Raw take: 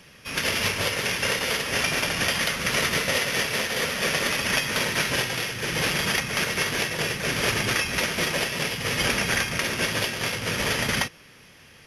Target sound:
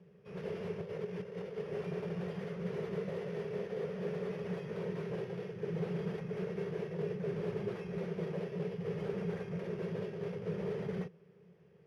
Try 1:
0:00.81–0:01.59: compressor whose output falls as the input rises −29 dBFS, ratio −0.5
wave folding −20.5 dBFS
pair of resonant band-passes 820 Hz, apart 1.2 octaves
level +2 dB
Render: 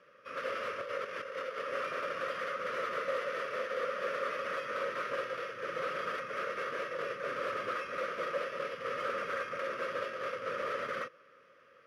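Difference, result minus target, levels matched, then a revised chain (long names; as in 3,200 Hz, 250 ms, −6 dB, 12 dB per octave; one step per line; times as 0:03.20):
250 Hz band −15.0 dB
0:00.81–0:01.59: compressor whose output falls as the input rises −29 dBFS, ratio −0.5
wave folding −20.5 dBFS
pair of resonant band-passes 270 Hz, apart 1.2 octaves
level +2 dB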